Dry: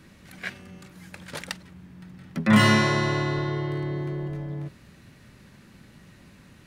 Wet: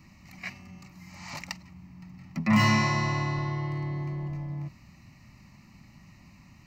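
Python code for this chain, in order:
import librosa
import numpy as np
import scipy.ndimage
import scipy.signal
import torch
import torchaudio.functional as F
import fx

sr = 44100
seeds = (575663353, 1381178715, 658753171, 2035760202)

y = 10.0 ** (-11.0 / 20.0) * np.tanh(x / 10.0 ** (-11.0 / 20.0))
y = fx.fixed_phaser(y, sr, hz=2300.0, stages=8)
y = fx.spec_repair(y, sr, seeds[0], start_s=1.06, length_s=0.26, low_hz=670.0, high_hz=8300.0, source='both')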